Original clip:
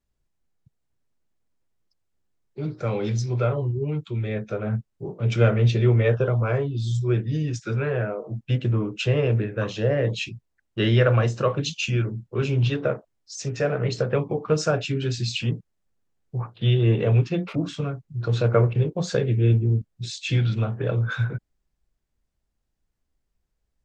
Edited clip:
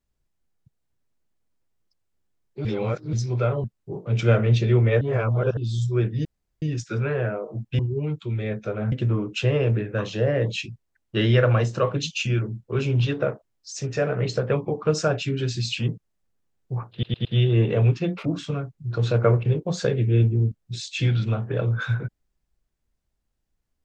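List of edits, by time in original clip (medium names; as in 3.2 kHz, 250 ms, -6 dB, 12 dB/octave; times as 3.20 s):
2.65–3.13 s: reverse
3.64–4.77 s: move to 8.55 s
6.14–6.70 s: reverse
7.38 s: insert room tone 0.37 s
16.55 s: stutter 0.11 s, 4 plays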